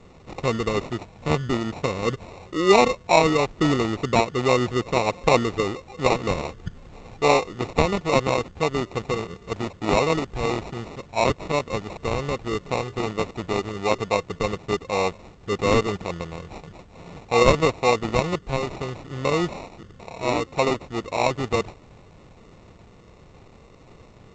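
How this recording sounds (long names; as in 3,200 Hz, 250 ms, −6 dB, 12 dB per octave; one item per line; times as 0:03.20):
aliases and images of a low sample rate 1,600 Hz, jitter 0%
G.722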